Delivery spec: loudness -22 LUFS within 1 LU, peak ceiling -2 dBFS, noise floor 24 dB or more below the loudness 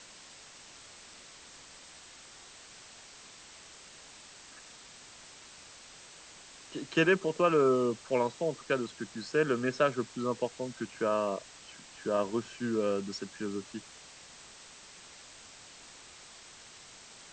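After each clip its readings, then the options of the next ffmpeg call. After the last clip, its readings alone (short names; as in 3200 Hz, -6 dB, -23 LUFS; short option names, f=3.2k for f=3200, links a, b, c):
noise floor -53 dBFS; noise floor target -56 dBFS; loudness -31.5 LUFS; peak -13.5 dBFS; loudness target -22.0 LUFS
-> -af "afftdn=nr=6:nf=-53"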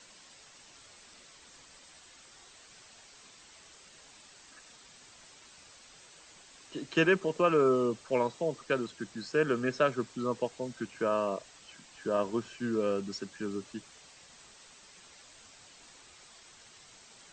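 noise floor -56 dBFS; loudness -31.5 LUFS; peak -13.5 dBFS; loudness target -22.0 LUFS
-> -af "volume=9.5dB"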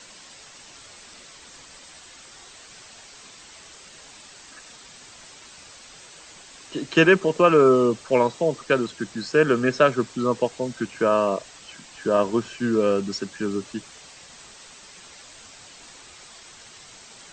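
loudness -22.0 LUFS; peak -4.0 dBFS; noise floor -47 dBFS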